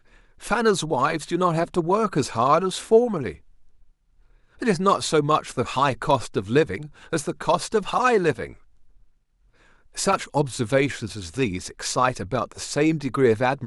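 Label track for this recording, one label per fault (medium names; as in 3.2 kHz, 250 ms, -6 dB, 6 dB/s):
10.130000	10.130000	dropout 3.7 ms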